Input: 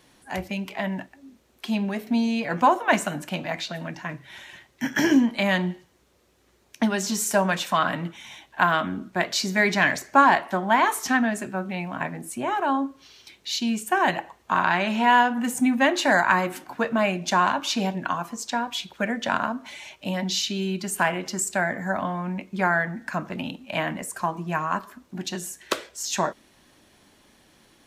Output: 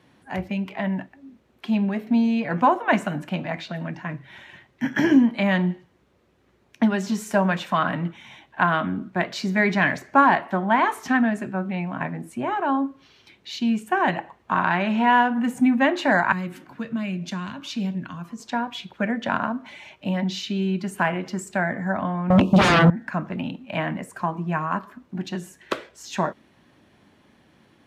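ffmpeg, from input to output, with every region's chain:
-filter_complex "[0:a]asettb=1/sr,asplit=3[a][b][c];[a]atrim=end=16.324[d];[b]atrim=start=16.32:end=18.4,asetpts=PTS-STARTPTS,afade=t=in:d=0.004:c=qsin,afade=t=out:st=2.076:d=0.004:c=qsin,equalizer=f=790:w=2.3:g=-7.5,acrossover=split=220|3000[e][f][g];[f]acompressor=threshold=-46dB:ratio=2:attack=3.2:release=140:knee=2.83:detection=peak[h];[e][h][g]amix=inputs=3:normalize=0[i];[c]atrim=start=18.396[j];[d][i]acrossfade=d=0.004:c1=hsin:c2=qsin[k];[k][j]acrossfade=d=0.004:c1=qsin:c2=hsin,asettb=1/sr,asplit=3[l][m][n];[l]atrim=end=22.304[o];[m]atrim=start=22.3:end=22.9,asetpts=PTS-STARTPTS,afade=t=in:d=0.004:c=qsin,afade=t=out:st=0.596:d=0.004:c=qsin,asuperstop=centerf=1800:order=12:qfactor=1.3,aeval=exprs='0.224*sin(PI/2*7.94*val(0)/0.224)':c=same[p];[n]atrim=start=22.896[q];[o][p]acrossfade=d=0.004:c1=hsin:c2=qsin[r];[r][q]acrossfade=d=0.004:c1=qsin:c2=hsin,highpass=89,bass=f=250:g=6,treble=f=4k:g=-13"

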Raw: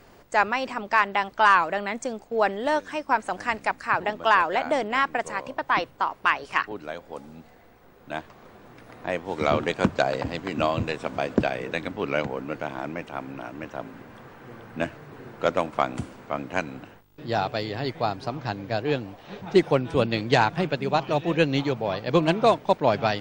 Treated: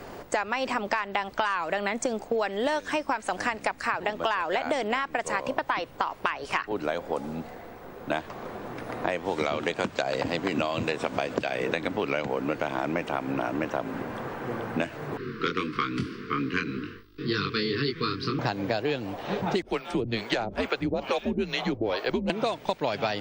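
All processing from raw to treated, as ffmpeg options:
-filter_complex "[0:a]asettb=1/sr,asplit=3[a][b][c];[a]atrim=end=15.174[d];[b]atrim=start=15.17:end=18.39,asetpts=PTS-STARTPTS,afade=t=in:d=0.004:c=qsin,afade=t=out:st=3.216:d=0.004:c=qsin,asuperstop=centerf=710:order=12:qfactor=1.1,highshelf=f=6k:t=q:w=3:g=-7,flanger=delay=20:depth=3.2:speed=1.8[e];[c]atrim=start=18.386[f];[d][e]acrossfade=d=0.004:c1=hsin:c2=qsin[g];[g][f]acrossfade=d=0.004:c1=qsin:c2=hsin,asettb=1/sr,asplit=3[h][i][j];[h]atrim=end=19.624[k];[i]atrim=start=19.62:end=22.3,asetpts=PTS-STARTPTS,afade=t=in:d=0.004:c=qsin,afade=t=out:st=2.676:d=0.004:c=qsin,acrossover=split=570[l][m];[l]aeval=exprs='val(0)*(1-1/2+1/2*cos(2*PI*2.3*n/s))':c=same[n];[m]aeval=exprs='val(0)*(1-1/2-1/2*cos(2*PI*2.3*n/s))':c=same[o];[n][o]amix=inputs=2:normalize=0,afreqshift=-110[p];[j]atrim=start=22.296[q];[k][p]acrossfade=d=0.004:c1=hsin:c2=qsin[r];[r][q]acrossfade=d=0.004:c1=qsin:c2=hsin,acrossover=split=100|2000[s][t][u];[s]acompressor=threshold=-56dB:ratio=4[v];[t]acompressor=threshold=-34dB:ratio=4[w];[u]acompressor=threshold=-35dB:ratio=4[x];[v][w][x]amix=inputs=3:normalize=0,equalizer=f=550:t=o:w=3:g=5.5,acompressor=threshold=-30dB:ratio=6,volume=7dB"

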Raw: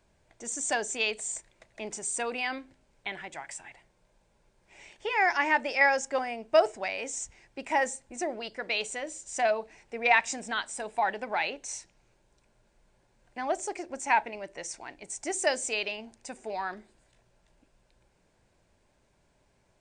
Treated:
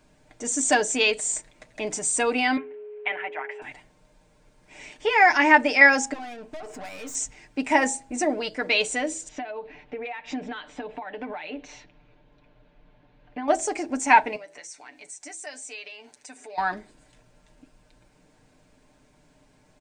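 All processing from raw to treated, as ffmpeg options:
-filter_complex "[0:a]asettb=1/sr,asplit=3[a][b][c];[a]atrim=end=2.574[d];[b]atrim=start=2.57:end=3.62,asetpts=PTS-STARTPTS,afade=t=in:d=0.004:c=qsin,afade=t=out:st=1.046:d=0.004:c=qsin,lowpass=f=2.8k:t=q:w=3,aeval=exprs='val(0)+0.00891*sin(2*PI*420*n/s)':c=same,acrossover=split=400 2200:gain=0.0708 1 0.0891[e][f][g];[e][f][g]amix=inputs=3:normalize=0[h];[c]atrim=start=3.616[i];[d][h]acrossfade=d=0.004:c1=hsin:c2=qsin[j];[j][i]acrossfade=d=0.004:c1=qsin:c2=hsin,asettb=1/sr,asplit=3[k][l][m];[k]atrim=end=6.134[n];[l]atrim=start=6.13:end=7.15,asetpts=PTS-STARTPTS,afade=t=in:d=0.004:c=qsin,afade=t=out:st=1.016:d=0.004:c=qsin,equalizer=f=1k:t=o:w=1.6:g=4,acompressor=threshold=-35dB:ratio=8:attack=3.2:release=140:knee=1:detection=peak,aeval=exprs='(tanh(158*val(0)+0.45)-tanh(0.45))/158':c=same[o];[m]atrim=start=7.146[p];[n][o]acrossfade=d=0.004:c1=hsin:c2=qsin[q];[q][p]acrossfade=d=0.004:c1=qsin:c2=hsin,asettb=1/sr,asplit=3[r][s][t];[r]atrim=end=9.284[u];[s]atrim=start=9.28:end=13.48,asetpts=PTS-STARTPTS,afade=t=in:d=0.004:c=qsin,afade=t=out:st=4.196:d=0.004:c=qsin,lowpass=f=3.6k:w=0.5412,lowpass=f=3.6k:w=1.3066,aecho=1:1:6.9:0.32,atrim=end_sample=185220,acompressor=threshold=-39dB:ratio=16:attack=3.2:release=140:knee=1:detection=peak[v];[t]atrim=start=13.476[w];[u][v]acrossfade=d=0.004:c1=hsin:c2=qsin[x];[x][w]acrossfade=d=0.004:c1=qsin:c2=hsin,asettb=1/sr,asplit=3[y][z][aa];[y]atrim=end=14.364[ab];[z]atrim=start=14.36:end=16.58,asetpts=PTS-STARTPTS,afade=t=in:d=0.004:c=qsin,afade=t=out:st=2.216:d=0.004:c=qsin,highpass=f=980:p=1,aecho=1:1:7.1:0.47,atrim=end_sample=97902,acompressor=threshold=-52dB:ratio=2.5:attack=3.2:release=140:knee=1:detection=peak[ac];[aa]atrim=start=16.576[ad];[ab][ac]acrossfade=d=0.004:c1=hsin:c2=qsin[ae];[ae][ad]acrossfade=d=0.004:c1=qsin:c2=hsin,equalizer=f=250:w=5:g=12.5,aecho=1:1:6.6:0.59,bandreject=f=162.9:t=h:w=4,bandreject=f=325.8:t=h:w=4,bandreject=f=488.7:t=h:w=4,bandreject=f=651.6:t=h:w=4,bandreject=f=814.5:t=h:w=4,bandreject=f=977.4:t=h:w=4,volume=6.5dB"

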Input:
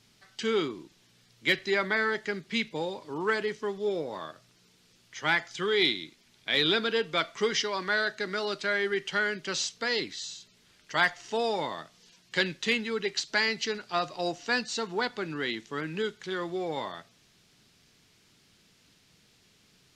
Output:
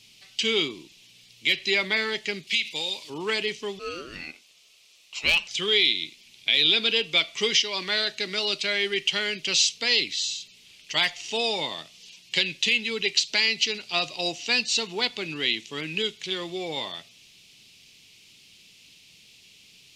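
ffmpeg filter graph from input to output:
-filter_complex "[0:a]asettb=1/sr,asplit=3[a][b][c];[a]atrim=end=2.474[d];[b]atrim=start=2.47:end=3.1,asetpts=PTS-STARTPTS,afade=t=in:d=0.004:c=qsin,afade=t=out:st=0.626:d=0.004:c=qsin,tiltshelf=f=1.3k:g=-7.5,acompressor=threshold=-30dB:ratio=12:attack=3.2:release=140:knee=1:detection=peak[e];[c]atrim=start=3.096[f];[d][e]acrossfade=d=0.004:c1=hsin:c2=qsin[g];[g][f]acrossfade=d=0.004:c1=qsin:c2=hsin,asettb=1/sr,asplit=3[h][i][j];[h]atrim=end=3.794[k];[i]atrim=start=3.79:end=5.48,asetpts=PTS-STARTPTS,afade=t=in:d=0.004:c=qsin,afade=t=out:st=1.686:d=0.004:c=qsin,highpass=290,aeval=exprs='val(0)*sin(2*PI*870*n/s)':c=same,aeval=exprs='0.119*(abs(mod(val(0)/0.119+3,4)-2)-1)':c=same[l];[j]atrim=start=5.476[m];[k][l]acrossfade=d=0.004:c1=hsin:c2=qsin[n];[n][m]acrossfade=d=0.004:c1=qsin:c2=hsin,highshelf=f=2k:t=q:w=3:g=8.5,alimiter=limit=-9.5dB:level=0:latency=1:release=185"

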